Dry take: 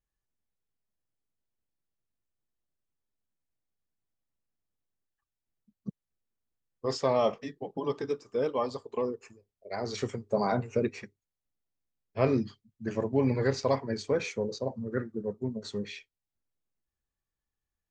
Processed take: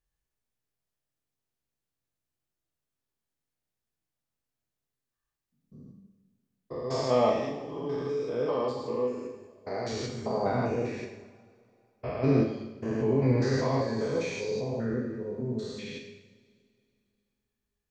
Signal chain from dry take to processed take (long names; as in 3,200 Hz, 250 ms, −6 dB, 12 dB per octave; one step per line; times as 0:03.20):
spectrum averaged block by block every 200 ms
0:07.15–0:08.72: transient designer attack −6 dB, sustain +5 dB
coupled-rooms reverb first 0.9 s, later 2.8 s, from −19 dB, DRR 1 dB
level +2 dB